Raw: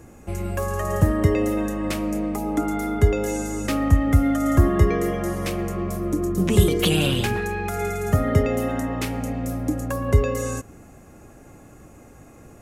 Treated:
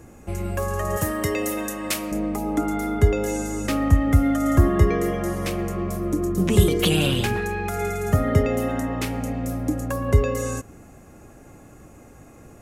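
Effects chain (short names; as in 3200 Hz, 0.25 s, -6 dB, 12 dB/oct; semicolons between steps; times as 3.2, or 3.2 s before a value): 0.97–2.12 tilt +3 dB/oct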